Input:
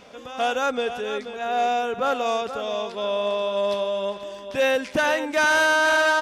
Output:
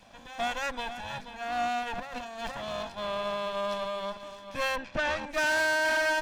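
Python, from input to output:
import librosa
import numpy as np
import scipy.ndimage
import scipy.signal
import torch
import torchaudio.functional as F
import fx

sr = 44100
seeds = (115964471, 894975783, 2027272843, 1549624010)

y = fx.lower_of_two(x, sr, delay_ms=1.2)
y = fx.over_compress(y, sr, threshold_db=-33.0, ratio=-1.0, at=(1.83, 2.5), fade=0.02)
y = fx.lowpass(y, sr, hz=fx.line((4.75, 3000.0), (5.28, 7200.0)), slope=12, at=(4.75, 5.28), fade=0.02)
y = y * 10.0 ** (-6.5 / 20.0)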